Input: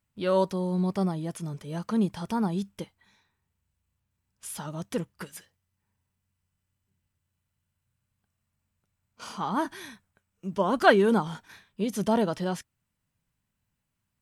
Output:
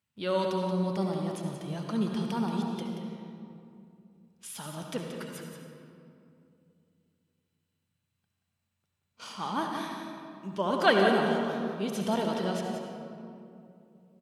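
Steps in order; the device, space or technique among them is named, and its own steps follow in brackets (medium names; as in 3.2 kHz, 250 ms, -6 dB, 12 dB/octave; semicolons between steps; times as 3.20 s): PA in a hall (high-pass 100 Hz; peaking EQ 3.3 kHz +6 dB 1.3 oct; delay 179 ms -8.5 dB; reverberation RT60 2.6 s, pre-delay 62 ms, DRR 2 dB); trim -5 dB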